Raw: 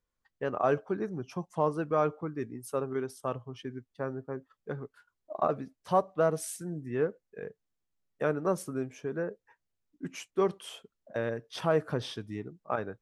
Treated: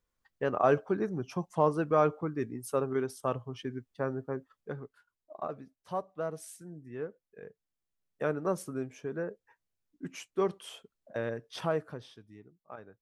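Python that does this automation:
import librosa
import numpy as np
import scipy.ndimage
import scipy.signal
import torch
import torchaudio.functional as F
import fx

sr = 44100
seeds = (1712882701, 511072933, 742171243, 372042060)

y = fx.gain(x, sr, db=fx.line((4.33, 2.0), (5.38, -9.0), (7.09, -9.0), (8.26, -2.0), (11.65, -2.0), (12.09, -14.5)))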